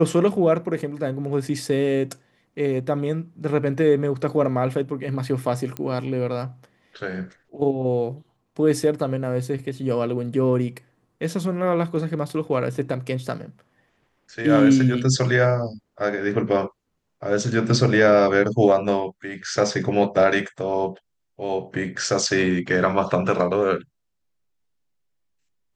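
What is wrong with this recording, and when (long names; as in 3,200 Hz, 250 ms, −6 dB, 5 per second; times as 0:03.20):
0:05.77: click −14 dBFS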